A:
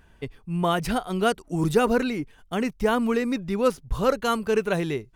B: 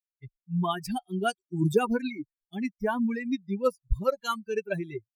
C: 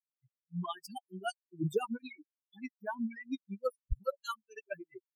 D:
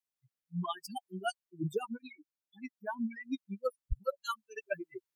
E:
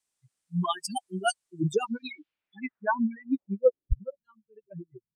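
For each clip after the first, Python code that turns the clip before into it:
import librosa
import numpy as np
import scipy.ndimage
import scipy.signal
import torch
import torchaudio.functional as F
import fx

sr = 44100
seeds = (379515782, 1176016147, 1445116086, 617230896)

y1 = fx.bin_expand(x, sr, power=3.0)
y1 = fx.low_shelf(y1, sr, hz=190.0, db=4.5)
y2 = fx.bin_expand(y1, sr, power=3.0)
y2 = y2 * librosa.db_to_amplitude(-5.5)
y3 = fx.rider(y2, sr, range_db=4, speed_s=0.5)
y3 = y3 * librosa.db_to_amplitude(1.0)
y4 = fx.filter_sweep_lowpass(y3, sr, from_hz=8700.0, to_hz=170.0, start_s=1.51, end_s=4.38, q=2.5)
y4 = y4 * librosa.db_to_amplitude(8.0)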